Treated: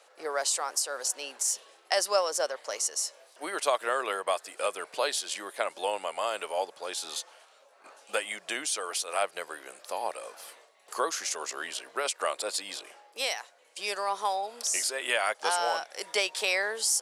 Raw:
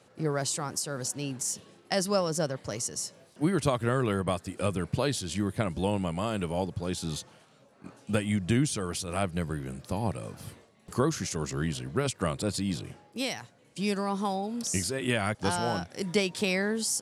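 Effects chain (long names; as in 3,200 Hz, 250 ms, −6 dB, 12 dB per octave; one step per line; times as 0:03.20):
high-pass filter 540 Hz 24 dB per octave
level +3.5 dB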